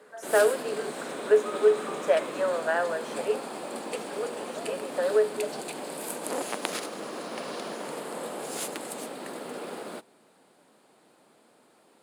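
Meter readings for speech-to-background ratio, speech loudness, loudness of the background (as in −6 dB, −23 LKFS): 8.0 dB, −27.5 LKFS, −35.5 LKFS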